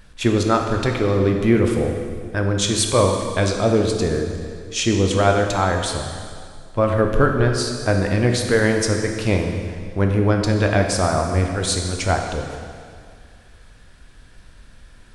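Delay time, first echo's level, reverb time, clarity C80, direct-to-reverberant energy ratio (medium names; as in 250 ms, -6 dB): no echo, no echo, 2.1 s, 5.5 dB, 2.5 dB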